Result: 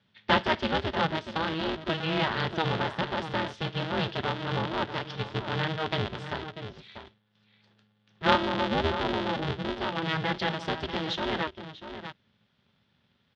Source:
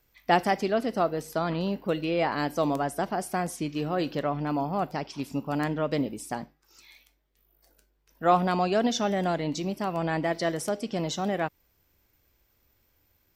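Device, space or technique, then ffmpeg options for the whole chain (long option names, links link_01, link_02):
ring modulator pedal into a guitar cabinet: -filter_complex "[0:a]asettb=1/sr,asplit=3[link_01][link_02][link_03];[link_01]atrim=end=8.474[link_04];[link_02]atrim=start=8.47:end=9.77,asetpts=PTS-STARTPTS,afade=type=in:duration=0.004:curve=qsin,afade=type=out:start_time=1.296:duration=0.004:curve=qsin,lowpass=frequency=1000:width=0.5412,lowpass=frequency=1000:width=1.3066[link_05];[link_03]atrim=start=9.766[link_06];[link_04][link_05]acrossfade=duration=0.004:curve1=hsin:curve2=qsin[link_07];[link_07][link_06]acrossfade=duration=0.004:curve1=qsin:curve2=hsin,asplit=2[link_08][link_09];[link_09]adelay=641.4,volume=-10dB,highshelf=frequency=4000:gain=-14.4[link_10];[link_08][link_10]amix=inputs=2:normalize=0,aeval=exprs='val(0)*sgn(sin(2*PI*160*n/s))':channel_layout=same,highpass=100,equalizer=frequency=290:width_type=q:width=4:gain=-7,equalizer=frequency=480:width_type=q:width=4:gain=-9,equalizer=frequency=730:width_type=q:width=4:gain=-7,equalizer=frequency=1100:width_type=q:width=4:gain=-5,equalizer=frequency=2300:width_type=q:width=4:gain=-4,equalizer=frequency=3400:width_type=q:width=4:gain=7,lowpass=frequency=4000:width=0.5412,lowpass=frequency=4000:width=1.3066,volume=2.5dB"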